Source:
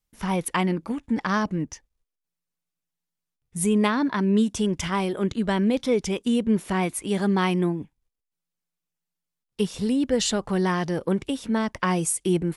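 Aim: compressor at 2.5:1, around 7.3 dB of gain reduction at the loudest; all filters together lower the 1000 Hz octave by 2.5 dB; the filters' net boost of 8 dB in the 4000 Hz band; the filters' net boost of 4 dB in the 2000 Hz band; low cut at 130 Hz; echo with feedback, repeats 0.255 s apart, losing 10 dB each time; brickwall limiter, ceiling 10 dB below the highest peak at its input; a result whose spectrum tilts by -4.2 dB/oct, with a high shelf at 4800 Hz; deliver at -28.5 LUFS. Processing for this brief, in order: HPF 130 Hz; bell 1000 Hz -4.5 dB; bell 2000 Hz +4 dB; bell 4000 Hz +7.5 dB; high shelf 4800 Hz +4 dB; compressor 2.5:1, threshold -26 dBFS; limiter -20 dBFS; feedback echo 0.255 s, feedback 32%, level -10 dB; gain +1 dB

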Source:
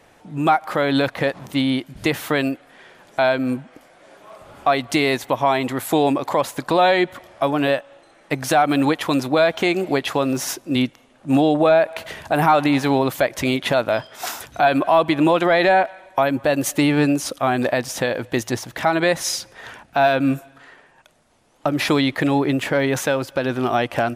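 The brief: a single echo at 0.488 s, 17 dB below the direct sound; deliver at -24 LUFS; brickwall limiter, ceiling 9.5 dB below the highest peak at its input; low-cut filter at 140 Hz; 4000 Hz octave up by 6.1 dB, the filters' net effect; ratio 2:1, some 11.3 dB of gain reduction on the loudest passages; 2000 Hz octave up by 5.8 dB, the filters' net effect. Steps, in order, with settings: HPF 140 Hz; bell 2000 Hz +6 dB; bell 4000 Hz +5.5 dB; compressor 2:1, threshold -31 dBFS; limiter -18.5 dBFS; echo 0.488 s -17 dB; gain +6.5 dB

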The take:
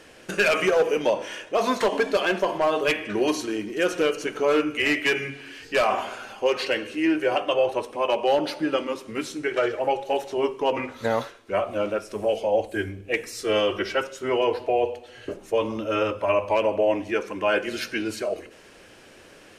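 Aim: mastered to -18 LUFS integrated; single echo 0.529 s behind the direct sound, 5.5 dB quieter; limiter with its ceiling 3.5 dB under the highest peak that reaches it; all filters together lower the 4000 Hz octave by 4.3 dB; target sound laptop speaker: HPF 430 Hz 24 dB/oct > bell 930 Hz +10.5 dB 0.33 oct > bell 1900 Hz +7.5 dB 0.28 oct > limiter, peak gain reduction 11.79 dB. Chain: bell 4000 Hz -7.5 dB; limiter -15.5 dBFS; HPF 430 Hz 24 dB/oct; bell 930 Hz +10.5 dB 0.33 oct; bell 1900 Hz +7.5 dB 0.28 oct; echo 0.529 s -5.5 dB; gain +12 dB; limiter -9 dBFS

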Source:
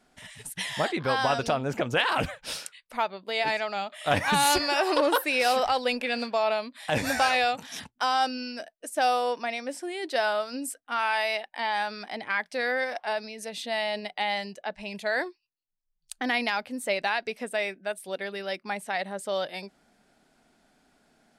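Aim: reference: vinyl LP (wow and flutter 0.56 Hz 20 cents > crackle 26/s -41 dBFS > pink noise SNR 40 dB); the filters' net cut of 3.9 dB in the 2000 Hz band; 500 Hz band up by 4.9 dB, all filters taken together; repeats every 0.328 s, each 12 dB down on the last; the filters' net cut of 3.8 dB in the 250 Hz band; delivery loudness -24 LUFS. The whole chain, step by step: bell 250 Hz -8 dB; bell 500 Hz +8 dB; bell 2000 Hz -5.5 dB; feedback echo 0.328 s, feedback 25%, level -12 dB; wow and flutter 0.56 Hz 20 cents; crackle 26/s -41 dBFS; pink noise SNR 40 dB; gain +2.5 dB

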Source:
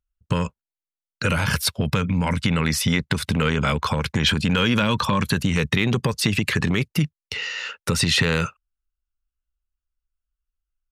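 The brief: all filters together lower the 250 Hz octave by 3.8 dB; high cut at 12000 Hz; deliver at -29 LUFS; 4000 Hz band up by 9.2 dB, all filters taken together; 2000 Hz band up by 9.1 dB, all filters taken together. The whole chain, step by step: LPF 12000 Hz; bell 250 Hz -6 dB; bell 2000 Hz +9 dB; bell 4000 Hz +8.5 dB; gain -12.5 dB

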